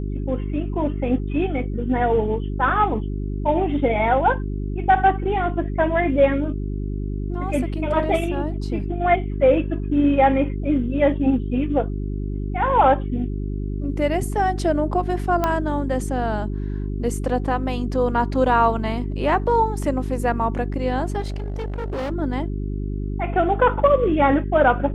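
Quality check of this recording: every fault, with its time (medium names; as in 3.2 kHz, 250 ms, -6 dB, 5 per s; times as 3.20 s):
hum 50 Hz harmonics 8 -26 dBFS
15.44 s: pop -8 dBFS
21.20–22.12 s: clipped -23.5 dBFS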